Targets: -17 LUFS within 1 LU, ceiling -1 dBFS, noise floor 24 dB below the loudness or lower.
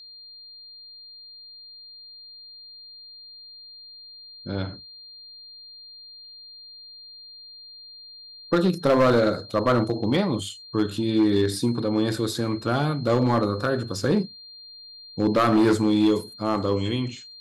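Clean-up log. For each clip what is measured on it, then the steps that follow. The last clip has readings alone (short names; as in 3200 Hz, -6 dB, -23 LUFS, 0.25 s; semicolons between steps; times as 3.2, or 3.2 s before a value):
clipped 0.7%; flat tops at -13.5 dBFS; steady tone 4200 Hz; tone level -42 dBFS; loudness -23.5 LUFS; peak -13.5 dBFS; loudness target -17.0 LUFS
-> clip repair -13.5 dBFS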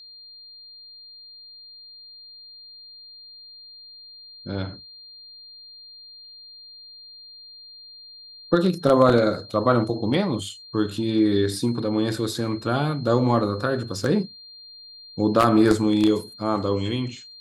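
clipped 0.0%; steady tone 4200 Hz; tone level -42 dBFS
-> notch 4200 Hz, Q 30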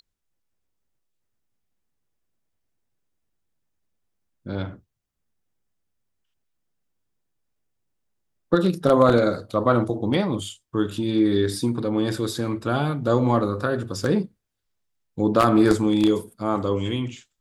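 steady tone none; loudness -22.5 LUFS; peak -4.5 dBFS; loudness target -17.0 LUFS
-> gain +5.5 dB; limiter -1 dBFS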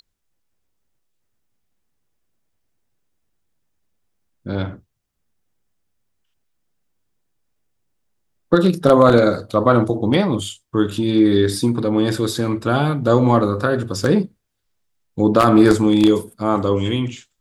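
loudness -17.0 LUFS; peak -1.0 dBFS; noise floor -72 dBFS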